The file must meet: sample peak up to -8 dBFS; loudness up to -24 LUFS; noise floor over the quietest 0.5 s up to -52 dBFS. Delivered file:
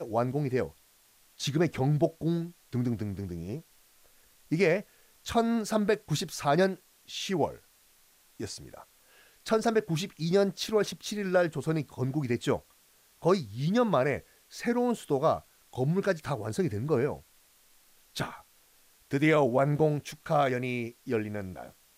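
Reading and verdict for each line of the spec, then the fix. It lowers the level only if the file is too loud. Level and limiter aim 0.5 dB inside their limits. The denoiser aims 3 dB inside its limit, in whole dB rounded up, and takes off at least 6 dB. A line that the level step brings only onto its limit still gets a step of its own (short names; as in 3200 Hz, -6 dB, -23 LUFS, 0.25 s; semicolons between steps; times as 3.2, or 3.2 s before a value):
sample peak -13.5 dBFS: OK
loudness -29.5 LUFS: OK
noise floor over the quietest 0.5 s -63 dBFS: OK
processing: none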